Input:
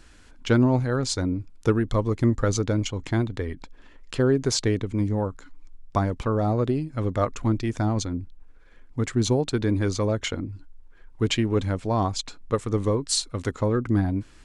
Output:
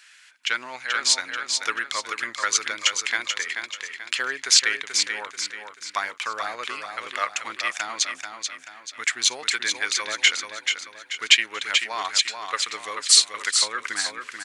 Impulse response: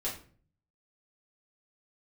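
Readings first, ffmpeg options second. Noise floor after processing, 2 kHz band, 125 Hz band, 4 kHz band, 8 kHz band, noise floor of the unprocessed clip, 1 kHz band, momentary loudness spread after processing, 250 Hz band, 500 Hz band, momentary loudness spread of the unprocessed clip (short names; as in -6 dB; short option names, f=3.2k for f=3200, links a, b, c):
-51 dBFS, +13.0 dB, under -35 dB, +12.5 dB, +11.0 dB, -50 dBFS, +1.5 dB, 14 LU, -24.0 dB, -14.0 dB, 9 LU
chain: -af "highpass=f=2k:t=q:w=1.8,aecho=1:1:435|870|1305|1740|2175:0.501|0.21|0.0884|0.0371|0.0156,dynaudnorm=f=340:g=5:m=5dB,volume=4.5dB"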